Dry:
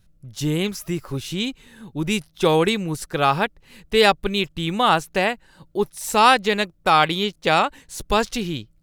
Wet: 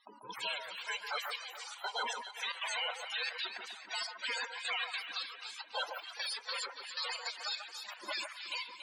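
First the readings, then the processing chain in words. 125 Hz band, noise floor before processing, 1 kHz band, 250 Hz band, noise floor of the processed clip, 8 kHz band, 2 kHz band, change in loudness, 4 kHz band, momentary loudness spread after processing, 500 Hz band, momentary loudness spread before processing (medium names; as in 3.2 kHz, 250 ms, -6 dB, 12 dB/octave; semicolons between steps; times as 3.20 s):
under -40 dB, -58 dBFS, -22.0 dB, -40.0 dB, -54 dBFS, -13.5 dB, -13.0 dB, -17.0 dB, -11.0 dB, 5 LU, -27.0 dB, 12 LU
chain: every band turned upside down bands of 500 Hz; high-pass 65 Hz 12 dB/octave; gate with hold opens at -47 dBFS; spectral gate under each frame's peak -25 dB weak; peaking EQ 160 Hz -13.5 dB 0.3 oct; compression 5:1, threshold -46 dBFS, peak gain reduction 18.5 dB; overdrive pedal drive 32 dB, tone 6.4 kHz, clips at -29 dBFS; loudest bins only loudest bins 32; trance gate "xx.xxx.." 155 bpm -12 dB; echo whose repeats swap between lows and highs 141 ms, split 1.7 kHz, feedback 63%, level -5 dB; trim +3.5 dB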